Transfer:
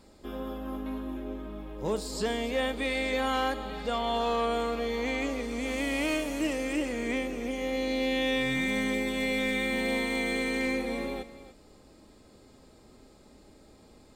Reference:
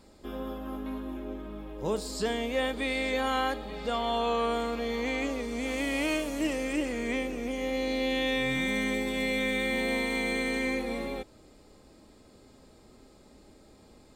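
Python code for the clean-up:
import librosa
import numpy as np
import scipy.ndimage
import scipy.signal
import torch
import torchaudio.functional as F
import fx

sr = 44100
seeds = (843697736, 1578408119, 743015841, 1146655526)

y = fx.fix_declip(x, sr, threshold_db=-21.0)
y = fx.fix_echo_inverse(y, sr, delay_ms=290, level_db=-14.5)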